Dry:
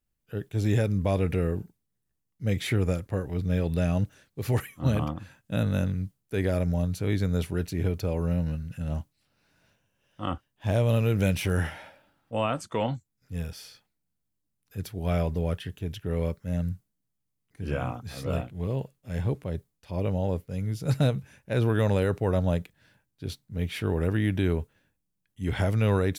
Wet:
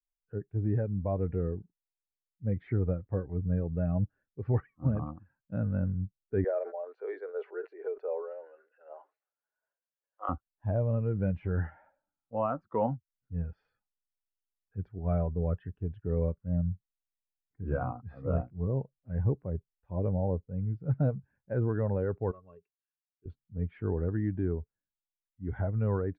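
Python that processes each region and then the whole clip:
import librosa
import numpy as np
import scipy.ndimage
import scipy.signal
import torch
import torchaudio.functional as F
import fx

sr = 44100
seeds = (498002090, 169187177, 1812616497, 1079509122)

y = fx.chain(x, sr, fx.steep_highpass(hz=390.0, slope=48),
    fx.sustainer(db_per_s=88.0), at=(6.44, 10.29))
y = fx.chain(y, sr, fx.pre_emphasis(coefficient=0.9),
    fx.small_body(hz=(410.0, 1100.0, 2700.0), ring_ms=65, db=17), at=(22.31, 23.26))
y = fx.bin_expand(y, sr, power=1.5)
y = scipy.signal.sosfilt(scipy.signal.butter(4, 1400.0, 'lowpass', fs=sr, output='sos'), y)
y = fx.rider(y, sr, range_db=4, speed_s=0.5)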